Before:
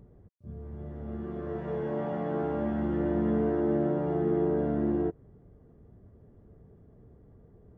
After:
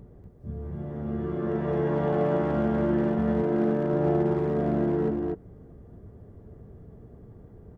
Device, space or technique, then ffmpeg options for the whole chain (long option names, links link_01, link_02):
limiter into clipper: -filter_complex "[0:a]asettb=1/sr,asplit=3[link_01][link_02][link_03];[link_01]atrim=end=3.184[link_04];[link_02]atrim=start=3.18:end=3.94,asetpts=PTS-STARTPTS,afade=type=in:duration=0.004:curve=qsin,afade=type=out:start_time=0.756:duration=0.004:curve=qsin,highpass=89[link_05];[link_03]atrim=start=3.936[link_06];[link_04][link_05]acrossfade=duration=0.004:curve1=hsin:curve2=qsin[link_07];[link_07][link_06]acrossfade=duration=0.004:curve1=qsin:curve2=hsin,alimiter=limit=-23dB:level=0:latency=1:release=112,asoftclip=type=hard:threshold=-25dB,aecho=1:1:240:0.668,volume=6dB"